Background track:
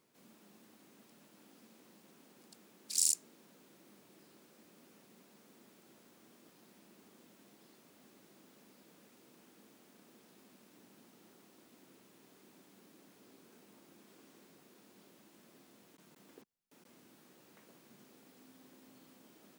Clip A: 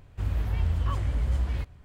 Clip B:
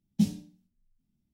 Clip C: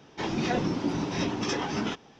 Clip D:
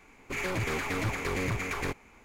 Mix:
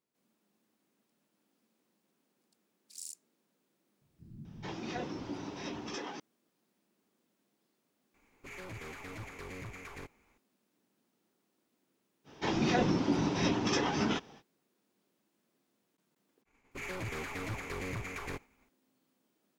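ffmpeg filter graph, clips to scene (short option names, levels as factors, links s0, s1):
-filter_complex "[3:a]asplit=2[s0][s1];[4:a]asplit=2[s2][s3];[0:a]volume=0.168[s4];[s0]acrossover=split=180[s5][s6];[s6]adelay=440[s7];[s5][s7]amix=inputs=2:normalize=0[s8];[s3]agate=range=0.0224:threshold=0.00282:ratio=3:release=100:detection=peak[s9];[s8]atrim=end=2.19,asetpts=PTS-STARTPTS,volume=0.299,afade=t=in:d=0.004:c=hsin,afade=t=out:st=2.186:d=0.004:c=hsin,adelay=176841S[s10];[s2]atrim=end=2.24,asetpts=PTS-STARTPTS,volume=0.2,afade=t=in:d=0.004:c=hsin,afade=t=out:st=2.236:d=0.004:c=hsin,adelay=8140[s11];[s1]atrim=end=2.19,asetpts=PTS-STARTPTS,volume=0.891,afade=t=in:d=0.05,afade=t=out:st=2.14:d=0.05,adelay=12240[s12];[s9]atrim=end=2.24,asetpts=PTS-STARTPTS,volume=0.398,afade=t=in:d=0.004:c=hsin,afade=t=out:st=2.236:d=0.004:c=hsin,adelay=16450[s13];[s4][s10][s11][s12][s13]amix=inputs=5:normalize=0"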